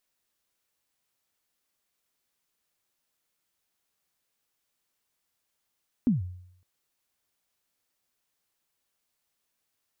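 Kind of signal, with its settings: kick drum length 0.56 s, from 270 Hz, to 90 Hz, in 147 ms, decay 0.71 s, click off, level -17 dB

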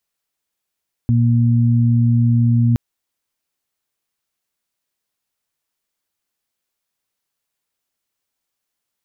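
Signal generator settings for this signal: steady additive tone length 1.67 s, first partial 118 Hz, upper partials -5.5 dB, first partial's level -12 dB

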